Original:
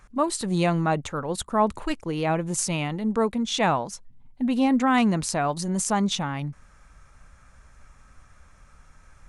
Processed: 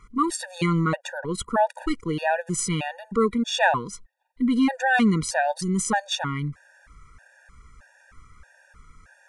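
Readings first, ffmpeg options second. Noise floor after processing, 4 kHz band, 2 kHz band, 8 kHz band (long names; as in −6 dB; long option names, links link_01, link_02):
−59 dBFS, +0.5 dB, +6.0 dB, −0.5 dB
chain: -af "equalizer=frequency=1700:width_type=o:width=0.5:gain=8.5,afftfilt=real='re*gt(sin(2*PI*1.6*pts/sr)*(1-2*mod(floor(b*sr/1024/480),2)),0)':imag='im*gt(sin(2*PI*1.6*pts/sr)*(1-2*mod(floor(b*sr/1024/480),2)),0)':win_size=1024:overlap=0.75,volume=2.5dB"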